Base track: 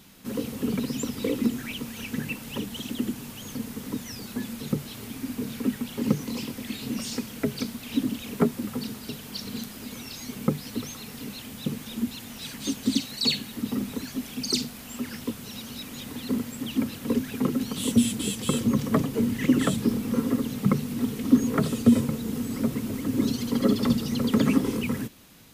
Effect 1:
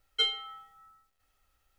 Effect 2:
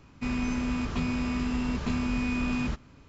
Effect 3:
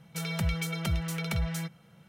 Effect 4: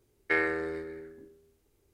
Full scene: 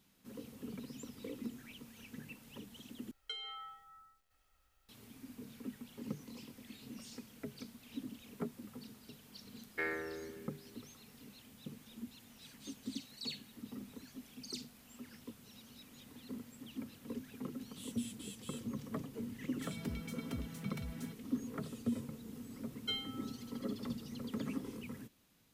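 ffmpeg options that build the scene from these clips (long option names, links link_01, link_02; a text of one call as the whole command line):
ffmpeg -i bed.wav -i cue0.wav -i cue1.wav -i cue2.wav -i cue3.wav -filter_complex "[1:a]asplit=2[link_01][link_02];[0:a]volume=-18.5dB[link_03];[link_01]acompressor=threshold=-45dB:ratio=12:attack=60:release=29:knee=6:detection=rms[link_04];[link_02]alimiter=limit=-18.5dB:level=0:latency=1:release=71[link_05];[link_03]asplit=2[link_06][link_07];[link_06]atrim=end=3.114[link_08];[link_04]atrim=end=1.78,asetpts=PTS-STARTPTS,volume=-1.5dB[link_09];[link_07]atrim=start=4.886[link_10];[4:a]atrim=end=1.93,asetpts=PTS-STARTPTS,volume=-10.5dB,afade=type=in:duration=0.004:curve=hsin,afade=type=out:start_time=1.926:duration=0.004:curve=hsin,adelay=9480[link_11];[3:a]atrim=end=2.08,asetpts=PTS-STARTPTS,volume=-15.5dB,afade=type=in:duration=0.004:curve=hsin,afade=type=out:start_time=2.076:duration=0.004:curve=hsin,adelay=19460[link_12];[link_05]atrim=end=1.78,asetpts=PTS-STARTPTS,volume=-9.5dB,afade=type=in:duration=0.004:curve=hsin,afade=type=out:start_time=1.776:duration=0.004:curve=hsin,adelay=22690[link_13];[link_08][link_09]acrossfade=duration=0.004:curve1=hsin:curve2=hsin[link_14];[link_14][link_10]acrossfade=duration=0.004:curve1=hsin:curve2=hsin[link_15];[link_15][link_11][link_12][link_13]amix=inputs=4:normalize=0" out.wav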